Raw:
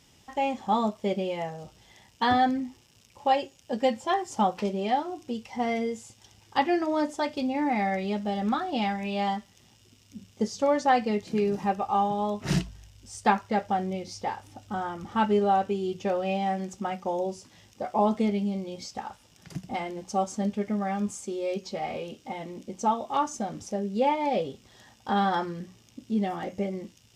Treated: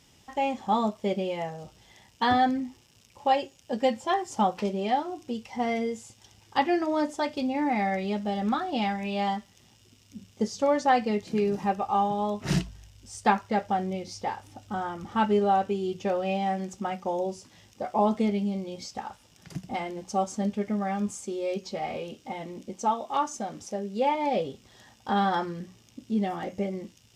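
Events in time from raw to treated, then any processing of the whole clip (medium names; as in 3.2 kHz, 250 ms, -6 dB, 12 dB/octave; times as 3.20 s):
22.73–24.15 s: bass shelf 210 Hz -8 dB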